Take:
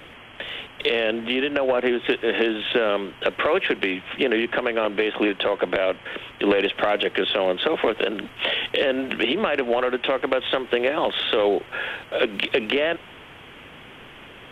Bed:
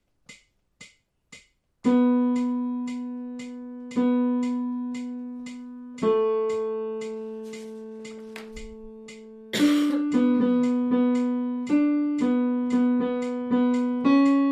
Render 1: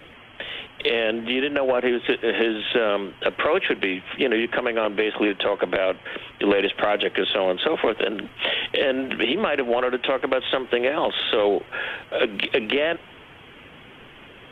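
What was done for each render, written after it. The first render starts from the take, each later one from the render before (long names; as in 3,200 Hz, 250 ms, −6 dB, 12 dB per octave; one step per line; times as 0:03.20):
broadband denoise 6 dB, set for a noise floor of −44 dBFS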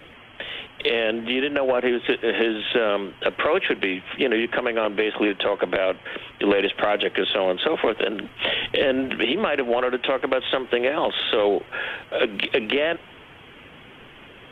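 0:08.40–0:09.09: low-shelf EQ 190 Hz +8 dB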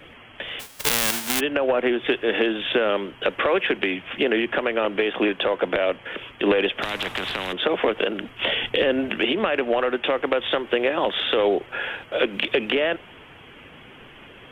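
0:00.59–0:01.39: spectral envelope flattened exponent 0.1
0:06.82–0:07.53: every bin compressed towards the loudest bin 4 to 1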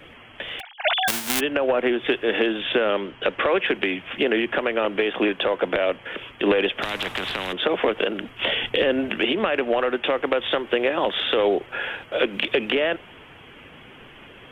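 0:00.60–0:01.08: three sine waves on the formant tracks
0:02.60–0:03.65: low-pass filter 6,200 Hz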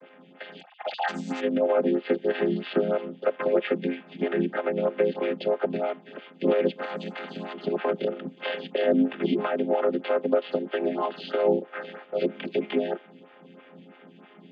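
channel vocoder with a chord as carrier minor triad, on F3
phaser with staggered stages 3.1 Hz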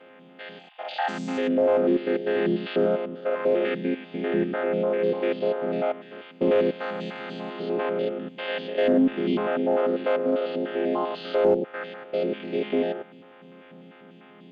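spectrum averaged block by block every 100 ms
in parallel at −6.5 dB: asymmetric clip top −20.5 dBFS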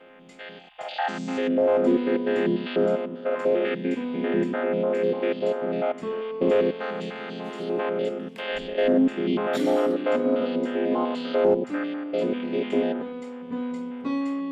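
mix in bed −8.5 dB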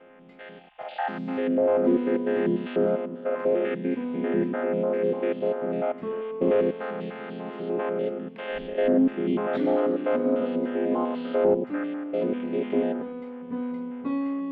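high-frequency loss of the air 440 metres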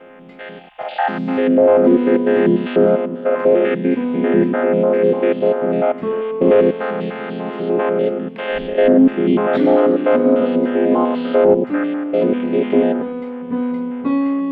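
level +10.5 dB
brickwall limiter −3 dBFS, peak gain reduction 3 dB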